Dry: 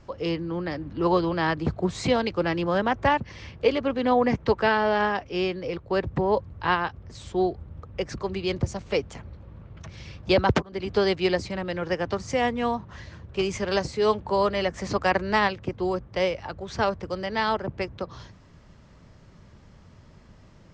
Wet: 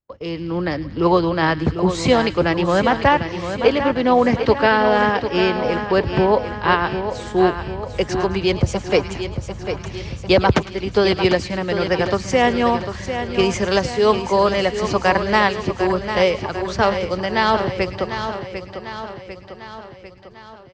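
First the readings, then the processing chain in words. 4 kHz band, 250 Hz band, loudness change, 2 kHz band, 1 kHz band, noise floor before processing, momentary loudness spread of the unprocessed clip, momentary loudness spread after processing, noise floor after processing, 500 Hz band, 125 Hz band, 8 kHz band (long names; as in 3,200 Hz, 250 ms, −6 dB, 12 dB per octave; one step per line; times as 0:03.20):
+8.0 dB, +7.5 dB, +7.0 dB, +7.5 dB, +7.5 dB, −52 dBFS, 12 LU, 12 LU, −40 dBFS, +7.5 dB, +7.5 dB, +8.5 dB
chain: delay with a high-pass on its return 107 ms, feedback 53%, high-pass 1,900 Hz, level −14 dB
automatic gain control gain up to 11.5 dB
noise gate −35 dBFS, range −36 dB
repeating echo 748 ms, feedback 55%, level −9 dB
level −2 dB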